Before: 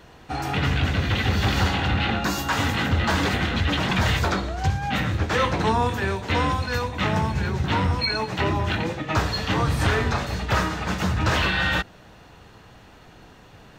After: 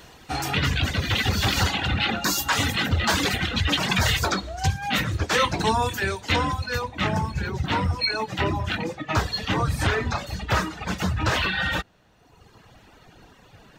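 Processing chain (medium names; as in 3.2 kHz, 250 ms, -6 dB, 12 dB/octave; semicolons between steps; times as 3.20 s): reverb removal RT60 1.3 s; treble shelf 3.2 kHz +11 dB, from 6.36 s +2 dB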